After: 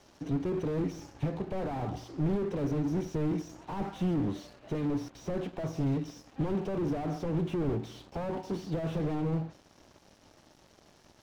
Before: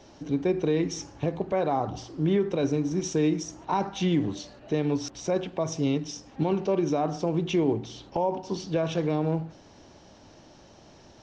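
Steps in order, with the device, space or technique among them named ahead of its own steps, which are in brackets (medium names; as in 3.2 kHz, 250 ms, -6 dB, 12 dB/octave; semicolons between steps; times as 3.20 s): early transistor amplifier (crossover distortion -53 dBFS; slew-rate limiter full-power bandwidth 12 Hz)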